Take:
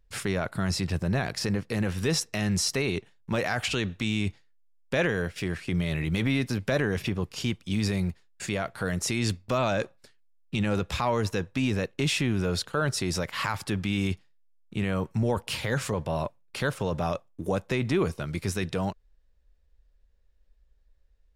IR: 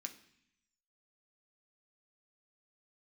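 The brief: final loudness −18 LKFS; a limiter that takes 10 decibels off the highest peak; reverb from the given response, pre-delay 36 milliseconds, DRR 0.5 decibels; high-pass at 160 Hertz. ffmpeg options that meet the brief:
-filter_complex "[0:a]highpass=160,alimiter=limit=-22dB:level=0:latency=1,asplit=2[link_01][link_02];[1:a]atrim=start_sample=2205,adelay=36[link_03];[link_02][link_03]afir=irnorm=-1:irlink=0,volume=3dB[link_04];[link_01][link_04]amix=inputs=2:normalize=0,volume=12.5dB"

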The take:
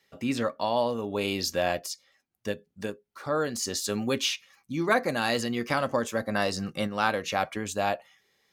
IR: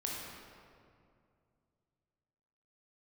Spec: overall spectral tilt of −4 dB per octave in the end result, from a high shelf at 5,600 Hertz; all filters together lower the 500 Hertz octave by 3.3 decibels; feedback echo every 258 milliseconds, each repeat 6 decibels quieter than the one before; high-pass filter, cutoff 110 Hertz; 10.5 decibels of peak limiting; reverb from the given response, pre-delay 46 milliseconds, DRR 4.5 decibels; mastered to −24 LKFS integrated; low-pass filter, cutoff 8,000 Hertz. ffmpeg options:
-filter_complex "[0:a]highpass=110,lowpass=8000,equalizer=frequency=500:width_type=o:gain=-4,highshelf=frequency=5600:gain=-4.5,alimiter=limit=-20.5dB:level=0:latency=1,aecho=1:1:258|516|774|1032|1290|1548:0.501|0.251|0.125|0.0626|0.0313|0.0157,asplit=2[link_01][link_02];[1:a]atrim=start_sample=2205,adelay=46[link_03];[link_02][link_03]afir=irnorm=-1:irlink=0,volume=-7dB[link_04];[link_01][link_04]amix=inputs=2:normalize=0,volume=7.5dB"

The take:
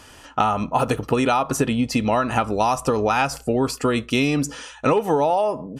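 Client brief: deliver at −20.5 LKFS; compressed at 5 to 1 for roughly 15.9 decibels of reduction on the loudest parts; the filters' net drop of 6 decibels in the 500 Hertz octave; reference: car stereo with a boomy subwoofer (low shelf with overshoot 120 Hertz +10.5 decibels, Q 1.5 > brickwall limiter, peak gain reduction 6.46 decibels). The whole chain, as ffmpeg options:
ffmpeg -i in.wav -af "equalizer=frequency=500:width_type=o:gain=-7,acompressor=threshold=-36dB:ratio=5,lowshelf=frequency=120:width_type=q:width=1.5:gain=10.5,volume=18dB,alimiter=limit=-10dB:level=0:latency=1" out.wav

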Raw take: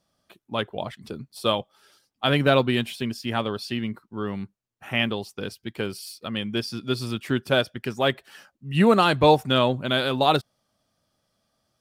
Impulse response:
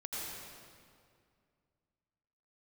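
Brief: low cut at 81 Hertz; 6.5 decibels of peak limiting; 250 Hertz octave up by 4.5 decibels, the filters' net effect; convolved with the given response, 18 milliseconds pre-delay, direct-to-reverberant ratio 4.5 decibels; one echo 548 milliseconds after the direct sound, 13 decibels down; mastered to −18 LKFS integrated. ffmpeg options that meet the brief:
-filter_complex "[0:a]highpass=81,equalizer=frequency=250:width_type=o:gain=5.5,alimiter=limit=-9dB:level=0:latency=1,aecho=1:1:548:0.224,asplit=2[link_01][link_02];[1:a]atrim=start_sample=2205,adelay=18[link_03];[link_02][link_03]afir=irnorm=-1:irlink=0,volume=-6dB[link_04];[link_01][link_04]amix=inputs=2:normalize=0,volume=5.5dB"

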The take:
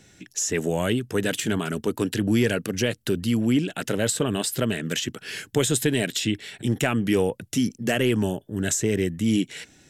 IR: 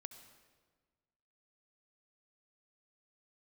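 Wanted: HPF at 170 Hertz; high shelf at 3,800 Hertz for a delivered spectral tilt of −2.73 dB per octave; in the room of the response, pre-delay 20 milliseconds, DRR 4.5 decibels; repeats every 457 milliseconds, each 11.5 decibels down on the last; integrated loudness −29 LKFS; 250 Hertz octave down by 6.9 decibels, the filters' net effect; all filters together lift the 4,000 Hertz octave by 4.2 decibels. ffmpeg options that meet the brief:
-filter_complex "[0:a]highpass=170,equalizer=frequency=250:width_type=o:gain=-7.5,highshelf=frequency=3800:gain=-3.5,equalizer=frequency=4000:width_type=o:gain=8,aecho=1:1:457|914|1371:0.266|0.0718|0.0194,asplit=2[link_01][link_02];[1:a]atrim=start_sample=2205,adelay=20[link_03];[link_02][link_03]afir=irnorm=-1:irlink=0,volume=1dB[link_04];[link_01][link_04]amix=inputs=2:normalize=0,volume=-4dB"

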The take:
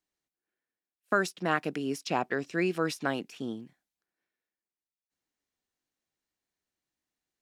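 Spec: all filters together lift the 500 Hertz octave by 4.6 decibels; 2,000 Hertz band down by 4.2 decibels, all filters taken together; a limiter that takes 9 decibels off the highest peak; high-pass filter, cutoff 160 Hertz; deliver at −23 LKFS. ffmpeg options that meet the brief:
ffmpeg -i in.wav -af "highpass=160,equalizer=frequency=500:width_type=o:gain=6.5,equalizer=frequency=2000:width_type=o:gain=-6.5,volume=10dB,alimiter=limit=-10.5dB:level=0:latency=1" out.wav

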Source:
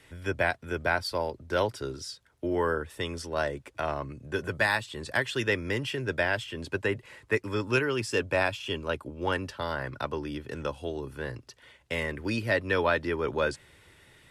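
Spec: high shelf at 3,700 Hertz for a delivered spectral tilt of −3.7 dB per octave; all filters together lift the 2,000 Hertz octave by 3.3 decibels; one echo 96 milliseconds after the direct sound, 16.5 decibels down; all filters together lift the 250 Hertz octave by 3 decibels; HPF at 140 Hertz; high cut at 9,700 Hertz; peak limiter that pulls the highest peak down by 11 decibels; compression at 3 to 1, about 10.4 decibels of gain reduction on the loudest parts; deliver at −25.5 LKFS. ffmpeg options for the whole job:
ffmpeg -i in.wav -af "highpass=140,lowpass=9700,equalizer=frequency=250:width_type=o:gain=4.5,equalizer=frequency=2000:width_type=o:gain=6,highshelf=frequency=3700:gain=-8,acompressor=threshold=-33dB:ratio=3,alimiter=level_in=5dB:limit=-24dB:level=0:latency=1,volume=-5dB,aecho=1:1:96:0.15,volume=14.5dB" out.wav

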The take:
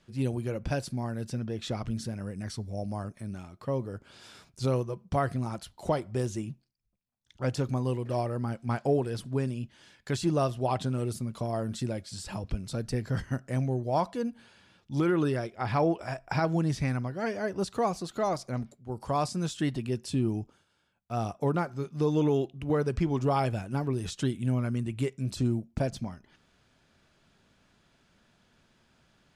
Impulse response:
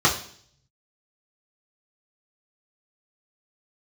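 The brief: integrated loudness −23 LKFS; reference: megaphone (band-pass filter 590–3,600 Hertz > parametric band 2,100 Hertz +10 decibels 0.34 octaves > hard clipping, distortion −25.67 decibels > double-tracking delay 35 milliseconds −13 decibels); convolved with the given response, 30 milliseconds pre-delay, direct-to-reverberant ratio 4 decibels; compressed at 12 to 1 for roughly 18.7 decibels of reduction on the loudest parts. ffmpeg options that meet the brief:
-filter_complex "[0:a]acompressor=threshold=-41dB:ratio=12,asplit=2[link_01][link_02];[1:a]atrim=start_sample=2205,adelay=30[link_03];[link_02][link_03]afir=irnorm=-1:irlink=0,volume=-22.5dB[link_04];[link_01][link_04]amix=inputs=2:normalize=0,highpass=590,lowpass=3600,equalizer=frequency=2100:width_type=o:width=0.34:gain=10,asoftclip=type=hard:threshold=-35.5dB,asplit=2[link_05][link_06];[link_06]adelay=35,volume=-13dB[link_07];[link_05][link_07]amix=inputs=2:normalize=0,volume=28dB"

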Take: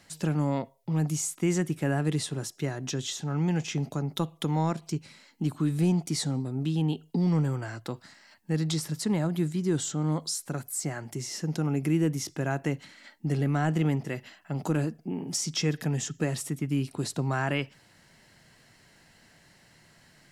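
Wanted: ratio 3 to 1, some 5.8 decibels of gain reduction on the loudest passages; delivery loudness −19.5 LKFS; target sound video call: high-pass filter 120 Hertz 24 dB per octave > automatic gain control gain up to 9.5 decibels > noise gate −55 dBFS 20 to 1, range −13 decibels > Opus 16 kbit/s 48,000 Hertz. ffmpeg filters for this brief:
ffmpeg -i in.wav -af "acompressor=threshold=-29dB:ratio=3,highpass=frequency=120:width=0.5412,highpass=frequency=120:width=1.3066,dynaudnorm=maxgain=9.5dB,agate=range=-13dB:threshold=-55dB:ratio=20,volume=10.5dB" -ar 48000 -c:a libopus -b:a 16k out.opus

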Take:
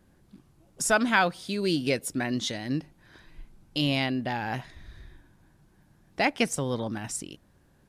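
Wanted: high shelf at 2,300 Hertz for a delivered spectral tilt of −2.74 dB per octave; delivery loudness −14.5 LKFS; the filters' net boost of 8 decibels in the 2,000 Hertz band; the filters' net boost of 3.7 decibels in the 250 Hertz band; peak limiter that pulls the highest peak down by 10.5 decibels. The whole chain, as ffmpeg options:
ffmpeg -i in.wav -af "equalizer=frequency=250:width_type=o:gain=4,equalizer=frequency=2000:width_type=o:gain=6,highshelf=frequency=2300:gain=9,volume=10.5dB,alimiter=limit=-1dB:level=0:latency=1" out.wav

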